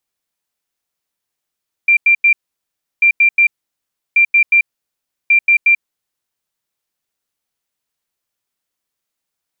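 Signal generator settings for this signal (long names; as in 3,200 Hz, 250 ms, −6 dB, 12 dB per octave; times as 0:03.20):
beeps in groups sine 2,370 Hz, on 0.09 s, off 0.09 s, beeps 3, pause 0.69 s, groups 4, −6.5 dBFS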